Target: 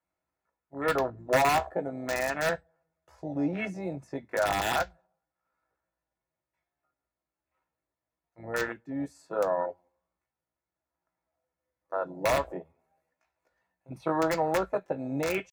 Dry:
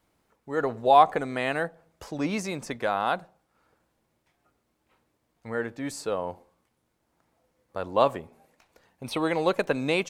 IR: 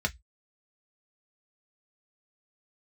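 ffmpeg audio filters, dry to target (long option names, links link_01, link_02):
-filter_complex "[0:a]atempo=0.65,lowshelf=frequency=390:gain=-9,alimiter=limit=-18.5dB:level=0:latency=1:release=206,afwtdn=0.0224,aeval=exprs='(mod(10*val(0)+1,2)-1)/10':channel_layout=same,asplit=2[link_01][link_02];[1:a]atrim=start_sample=2205[link_03];[link_02][link_03]afir=irnorm=-1:irlink=0,volume=-6.5dB[link_04];[link_01][link_04]amix=inputs=2:normalize=0"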